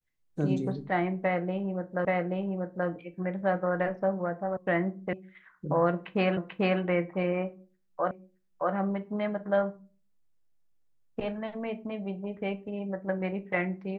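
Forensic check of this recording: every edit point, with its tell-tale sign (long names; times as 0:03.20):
0:02.05: the same again, the last 0.83 s
0:04.57: cut off before it has died away
0:05.13: cut off before it has died away
0:06.37: the same again, the last 0.44 s
0:08.11: the same again, the last 0.62 s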